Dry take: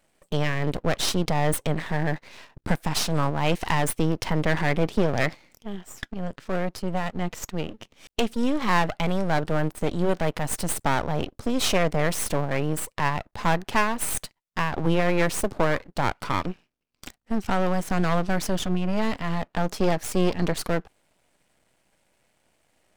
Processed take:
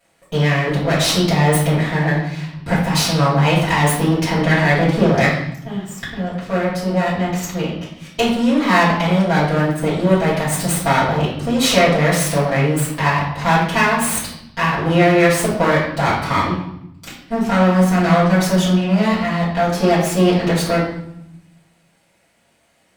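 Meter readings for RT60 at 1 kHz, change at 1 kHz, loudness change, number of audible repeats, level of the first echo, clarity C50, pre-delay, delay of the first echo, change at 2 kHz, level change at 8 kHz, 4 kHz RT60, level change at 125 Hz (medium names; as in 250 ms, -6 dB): 0.75 s, +9.0 dB, +9.5 dB, no echo, no echo, 3.0 dB, 4 ms, no echo, +10.0 dB, +7.5 dB, 0.70 s, +10.5 dB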